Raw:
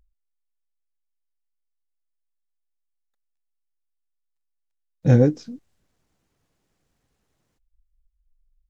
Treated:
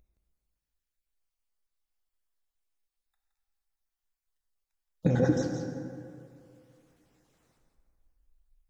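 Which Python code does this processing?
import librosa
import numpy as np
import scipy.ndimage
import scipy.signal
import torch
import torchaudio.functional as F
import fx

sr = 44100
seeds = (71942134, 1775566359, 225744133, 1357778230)

y = fx.spec_dropout(x, sr, seeds[0], share_pct=30)
y = fx.over_compress(y, sr, threshold_db=-20.0, ratio=-1.0)
y = fx.low_shelf(y, sr, hz=130.0, db=-7.0)
y = y + 10.0 ** (-7.5 / 20.0) * np.pad(y, (int(169 * sr / 1000.0), 0))[:len(y)]
y = fx.rev_plate(y, sr, seeds[1], rt60_s=2.4, hf_ratio=0.5, predelay_ms=0, drr_db=3.5)
y = y * librosa.db_to_amplitude(-1.5)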